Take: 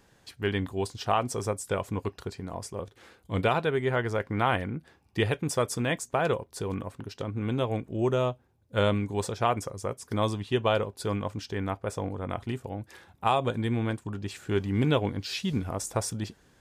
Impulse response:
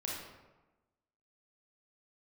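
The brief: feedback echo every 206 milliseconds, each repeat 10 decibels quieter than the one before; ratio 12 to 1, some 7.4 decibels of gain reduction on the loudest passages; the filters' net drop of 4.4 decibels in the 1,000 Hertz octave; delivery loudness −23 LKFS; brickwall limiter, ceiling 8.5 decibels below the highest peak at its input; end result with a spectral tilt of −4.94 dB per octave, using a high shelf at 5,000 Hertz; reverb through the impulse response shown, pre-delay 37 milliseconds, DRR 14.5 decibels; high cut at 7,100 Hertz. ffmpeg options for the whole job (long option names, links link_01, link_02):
-filter_complex "[0:a]lowpass=7100,equalizer=frequency=1000:width_type=o:gain=-6.5,highshelf=frequency=5000:gain=7.5,acompressor=threshold=-28dB:ratio=12,alimiter=level_in=2.5dB:limit=-24dB:level=0:latency=1,volume=-2.5dB,aecho=1:1:206|412|618|824:0.316|0.101|0.0324|0.0104,asplit=2[link_01][link_02];[1:a]atrim=start_sample=2205,adelay=37[link_03];[link_02][link_03]afir=irnorm=-1:irlink=0,volume=-16.5dB[link_04];[link_01][link_04]amix=inputs=2:normalize=0,volume=14dB"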